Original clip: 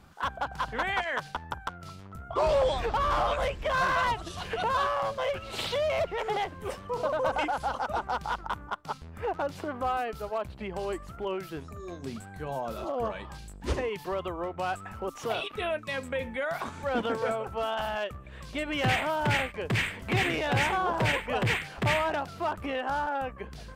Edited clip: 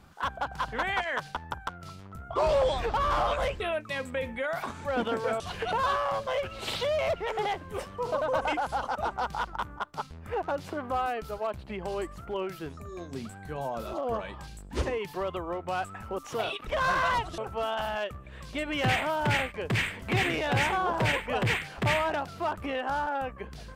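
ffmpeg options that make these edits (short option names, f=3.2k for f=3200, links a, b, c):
-filter_complex "[0:a]asplit=5[a][b][c][d][e];[a]atrim=end=3.602[f];[b]atrim=start=15.578:end=17.382[g];[c]atrim=start=4.308:end=15.582[h];[d]atrim=start=3.598:end=4.312[i];[e]atrim=start=17.378[j];[f][g]acrossfade=d=0.004:c1=hsin:c2=hsin[k];[k][h]acrossfade=d=0.004:c1=hsin:c2=hsin[l];[l][i]acrossfade=d=0.004:c1=hsin:c2=hsin[m];[m][j]acrossfade=d=0.004:c1=hsin:c2=hsin"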